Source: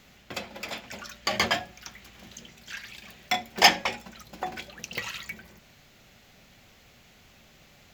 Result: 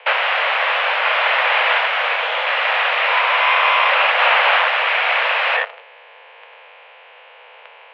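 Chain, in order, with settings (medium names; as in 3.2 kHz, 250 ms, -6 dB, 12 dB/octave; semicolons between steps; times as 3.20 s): every event in the spectrogram widened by 480 ms; in parallel at +1 dB: peak limiter -8.5 dBFS, peak gain reduction 11 dB; on the sum: waveshaping leveller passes 5; sine folder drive 20 dB, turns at 5.5 dBFS; mistuned SSB +280 Hz 230–2600 Hz; trim -10.5 dB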